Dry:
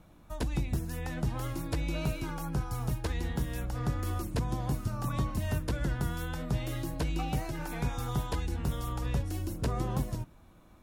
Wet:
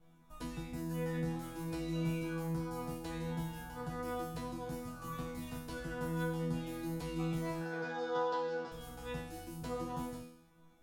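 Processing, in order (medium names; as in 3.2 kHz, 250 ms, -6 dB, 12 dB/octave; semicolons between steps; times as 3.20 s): 7.61–8.72 s: cabinet simulation 320–5600 Hz, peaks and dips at 460 Hz +7 dB, 770 Hz +6 dB, 1.5 kHz +9 dB, 2.2 kHz -6 dB, 4.9 kHz +5 dB; chord resonator E3 fifth, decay 0.74 s; 3.30–3.83 s: whistle 880 Hz -63 dBFS; trim +12 dB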